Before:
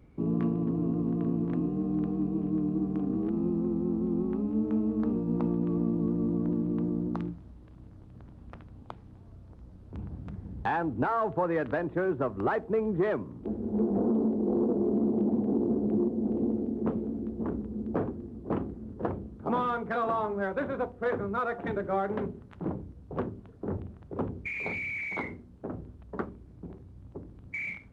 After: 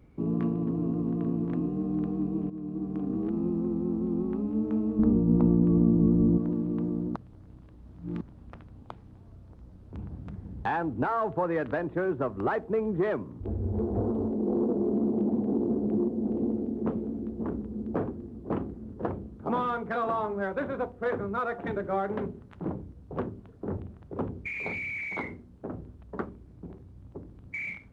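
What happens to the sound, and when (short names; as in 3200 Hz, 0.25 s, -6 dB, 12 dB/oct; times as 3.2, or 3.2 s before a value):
2.5–3.35 fade in equal-power, from -12.5 dB
4.99–6.38 tilt -3 dB/oct
7.16–8.21 reverse
13.4–14.32 resonant low shelf 130 Hz +9.5 dB, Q 3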